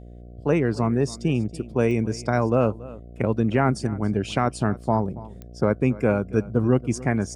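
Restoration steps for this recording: de-click; de-hum 59.5 Hz, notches 12; inverse comb 0.28 s -19 dB

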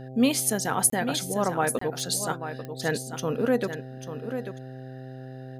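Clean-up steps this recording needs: de-click; de-hum 130.1 Hz, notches 6; interpolate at 0.9/1.79, 24 ms; inverse comb 0.841 s -9.5 dB

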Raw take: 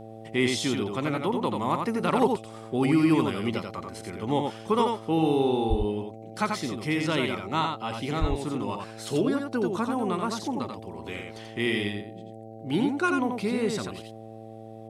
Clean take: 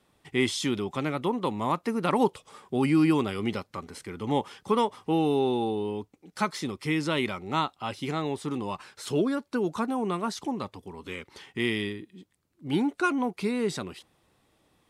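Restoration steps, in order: clip repair -11 dBFS; de-hum 111.1 Hz, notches 7; 5.69–5.81 HPF 140 Hz 24 dB/oct; 8.2–8.32 HPF 140 Hz 24 dB/oct; inverse comb 87 ms -4.5 dB

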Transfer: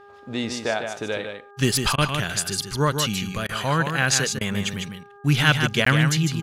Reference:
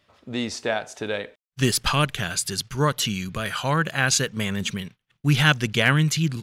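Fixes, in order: de-hum 404.6 Hz, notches 4; interpolate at 5.85, 14 ms; interpolate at 1.96/3.47/4.39, 19 ms; inverse comb 0.151 s -6.5 dB

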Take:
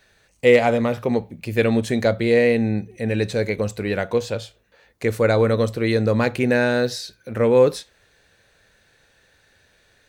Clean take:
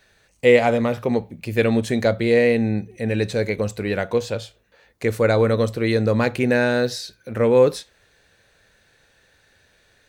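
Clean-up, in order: clip repair -4.5 dBFS

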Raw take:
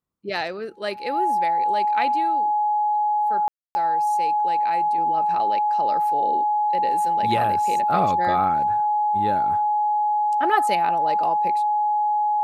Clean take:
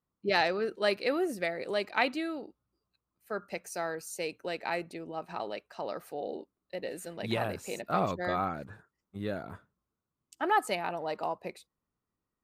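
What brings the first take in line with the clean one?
notch 840 Hz, Q 30; room tone fill 3.48–3.75; gain 0 dB, from 4.98 s -6 dB

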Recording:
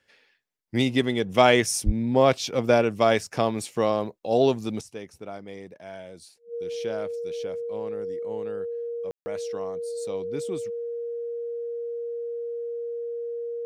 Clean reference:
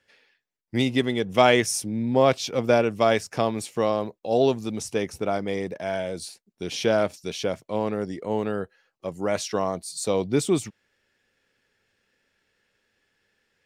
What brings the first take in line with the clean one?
notch 470 Hz, Q 30; 1.85–1.97 HPF 140 Hz 24 dB/oct; room tone fill 9.11–9.26; gain 0 dB, from 4.81 s +12 dB

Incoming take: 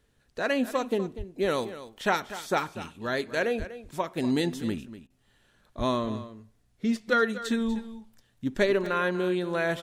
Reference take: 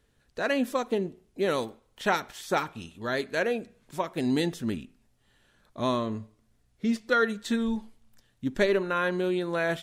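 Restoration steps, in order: de-plosive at 1.17/3.58/5.77; interpolate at 8.86, 2.7 ms; interpolate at 5.07, 29 ms; inverse comb 0.243 s -14 dB

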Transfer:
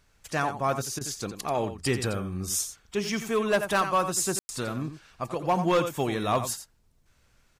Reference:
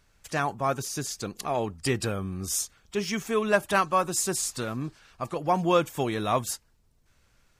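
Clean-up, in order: clip repair -17 dBFS; room tone fill 4.39–4.49; interpolate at 0.99, 18 ms; inverse comb 87 ms -10.5 dB

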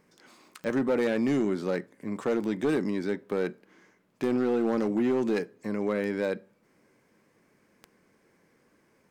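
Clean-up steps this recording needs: clip repair -20 dBFS; de-click

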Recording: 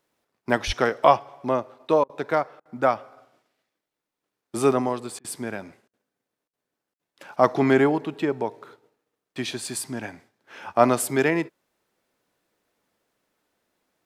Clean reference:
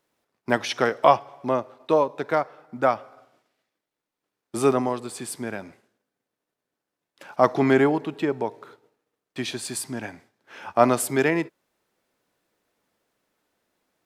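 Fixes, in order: 0.66–0.78 HPF 140 Hz 24 dB/oct; interpolate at 2.04/2.6/5.19/5.88/6.48/6.94, 53 ms

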